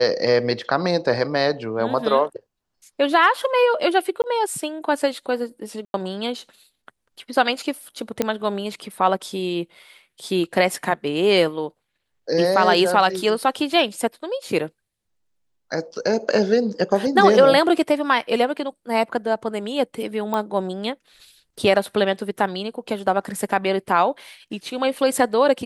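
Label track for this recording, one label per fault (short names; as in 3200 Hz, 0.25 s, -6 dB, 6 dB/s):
4.220000	4.240000	gap 19 ms
5.850000	5.940000	gap 91 ms
8.220000	8.220000	pop -6 dBFS
20.340000	20.340000	pop -11 dBFS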